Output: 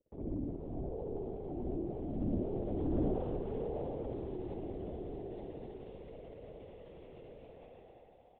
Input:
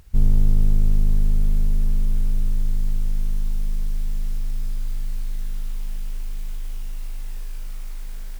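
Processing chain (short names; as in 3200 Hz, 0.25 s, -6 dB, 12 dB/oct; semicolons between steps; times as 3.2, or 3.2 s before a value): Doppler pass-by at 2.09, 22 m/s, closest 20 m; gate with hold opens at -38 dBFS; elliptic band-pass 220–560 Hz, stop band 40 dB; tilt +4.5 dB/oct; negative-ratio compressor -59 dBFS, ratio -1; tube stage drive 49 dB, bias 0.7; frequency-shifting echo 0.176 s, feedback 58%, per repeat +56 Hz, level -3.5 dB; spring tank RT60 2.2 s, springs 60 ms, chirp 70 ms, DRR -9.5 dB; LPC vocoder at 8 kHz whisper; mismatched tape noise reduction encoder only; gain +15.5 dB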